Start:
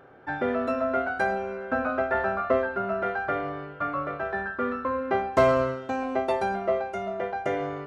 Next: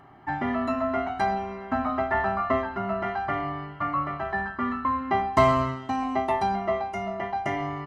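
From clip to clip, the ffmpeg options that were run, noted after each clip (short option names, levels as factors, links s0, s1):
-af "aecho=1:1:1:0.92"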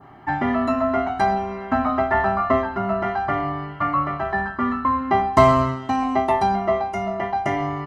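-af "adynamicequalizer=threshold=0.00794:dfrequency=2500:dqfactor=1:tfrequency=2500:tqfactor=1:attack=5:release=100:ratio=0.375:range=2:mode=cutabove:tftype=bell,volume=2"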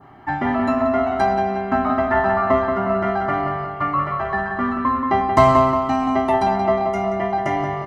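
-filter_complex "[0:a]asplit=2[s0][s1];[s1]adelay=179,lowpass=f=3800:p=1,volume=0.501,asplit=2[s2][s3];[s3]adelay=179,lowpass=f=3800:p=1,volume=0.54,asplit=2[s4][s5];[s5]adelay=179,lowpass=f=3800:p=1,volume=0.54,asplit=2[s6][s7];[s7]adelay=179,lowpass=f=3800:p=1,volume=0.54,asplit=2[s8][s9];[s9]adelay=179,lowpass=f=3800:p=1,volume=0.54,asplit=2[s10][s11];[s11]adelay=179,lowpass=f=3800:p=1,volume=0.54,asplit=2[s12][s13];[s13]adelay=179,lowpass=f=3800:p=1,volume=0.54[s14];[s0][s2][s4][s6][s8][s10][s12][s14]amix=inputs=8:normalize=0"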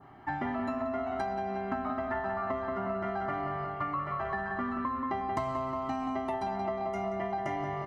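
-af "acompressor=threshold=0.0794:ratio=10,volume=0.422"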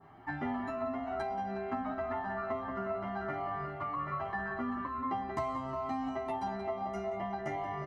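-filter_complex "[0:a]asplit=2[s0][s1];[s1]adelay=10.1,afreqshift=2.4[s2];[s0][s2]amix=inputs=2:normalize=1"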